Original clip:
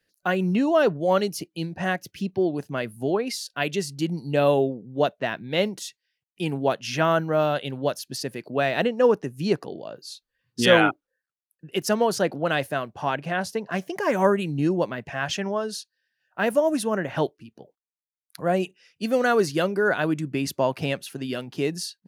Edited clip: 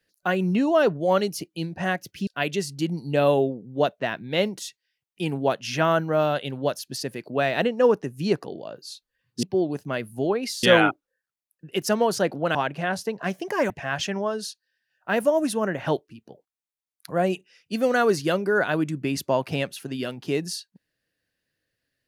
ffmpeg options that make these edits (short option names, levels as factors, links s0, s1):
-filter_complex "[0:a]asplit=6[s0][s1][s2][s3][s4][s5];[s0]atrim=end=2.272[s6];[s1]atrim=start=3.468:end=10.632[s7];[s2]atrim=start=2.268:end=3.472[s8];[s3]atrim=start=10.628:end=12.552[s9];[s4]atrim=start=13.028:end=14.182[s10];[s5]atrim=start=14.998[s11];[s6][s7]acrossfade=d=0.004:c1=hsin:c2=hsin[s12];[s12][s8]acrossfade=d=0.004:c1=hsin:c2=hsin[s13];[s13][s9]acrossfade=d=0.004:c1=hsin:c2=hsin[s14];[s14][s10]acrossfade=d=0.004:c1=hsin:c2=hsin[s15];[s15][s11]acrossfade=d=0.004:c1=hsin:c2=hsin"